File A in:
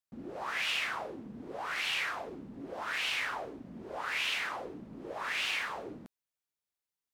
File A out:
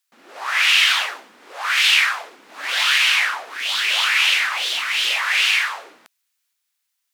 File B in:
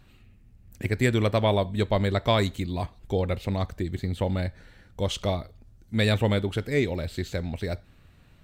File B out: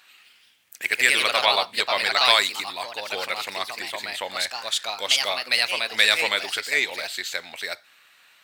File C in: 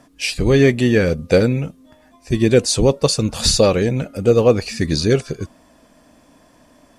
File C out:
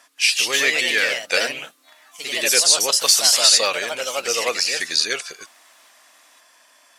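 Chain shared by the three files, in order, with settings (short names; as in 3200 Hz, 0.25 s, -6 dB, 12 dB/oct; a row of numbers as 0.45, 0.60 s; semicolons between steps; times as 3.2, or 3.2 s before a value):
HPF 1400 Hz 12 dB/oct; echoes that change speed 0.178 s, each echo +2 st, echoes 2; maximiser +6.5 dB; normalise peaks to -2 dBFS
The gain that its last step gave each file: +10.0, +5.0, -1.0 dB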